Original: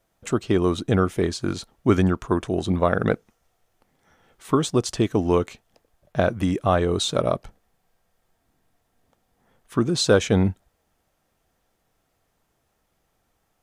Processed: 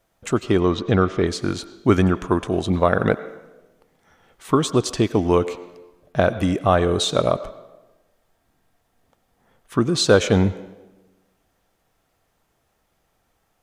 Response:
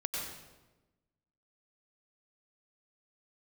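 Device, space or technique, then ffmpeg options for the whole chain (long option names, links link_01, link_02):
filtered reverb send: -filter_complex "[0:a]asettb=1/sr,asplit=3[link_01][link_02][link_03];[link_01]atrim=end=0.604[link_04];[link_02]atrim=start=0.6:end=1.27,asetpts=PTS-STARTPTS,afade=type=in:duration=0.004:curve=qsin,afade=type=out:start_time=0.666:duration=0.004:curve=qsin,lowpass=frequency=5800:width=0.5412,lowpass=frequency=5800:width=1.3066[link_05];[link_03]atrim=start=1.266[link_06];[link_04][link_05]acrossfade=duration=0.004:curve1=hsin:curve2=qsin[link_07];[link_07][link_06]acrossfade=duration=0.004:curve1=qsin:curve2=hsin,asplit=2[link_08][link_09];[link_09]highpass=350,lowpass=5400[link_10];[1:a]atrim=start_sample=2205[link_11];[link_10][link_11]afir=irnorm=-1:irlink=0,volume=-14.5dB[link_12];[link_08][link_12]amix=inputs=2:normalize=0,volume=2dB"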